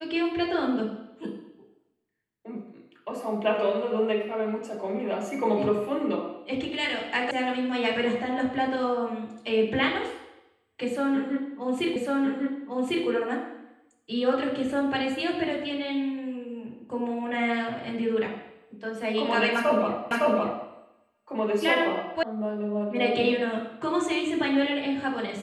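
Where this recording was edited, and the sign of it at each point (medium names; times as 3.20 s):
7.31 s: sound stops dead
11.96 s: repeat of the last 1.1 s
20.11 s: repeat of the last 0.56 s
22.23 s: sound stops dead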